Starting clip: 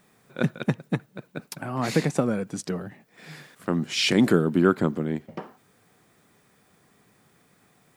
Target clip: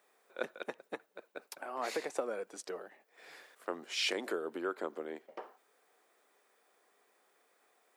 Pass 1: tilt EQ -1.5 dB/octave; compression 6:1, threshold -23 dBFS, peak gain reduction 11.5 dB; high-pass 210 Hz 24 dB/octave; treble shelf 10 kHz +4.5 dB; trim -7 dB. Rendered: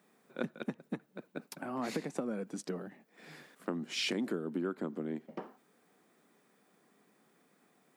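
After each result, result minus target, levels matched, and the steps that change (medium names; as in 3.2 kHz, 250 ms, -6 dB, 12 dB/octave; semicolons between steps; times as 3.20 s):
250 Hz band +8.5 dB; compression: peak gain reduction +5.5 dB
change: high-pass 430 Hz 24 dB/octave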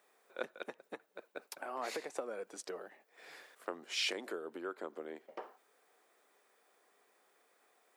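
compression: peak gain reduction +5.5 dB
change: compression 6:1, threshold -16.5 dBFS, peak gain reduction 6.5 dB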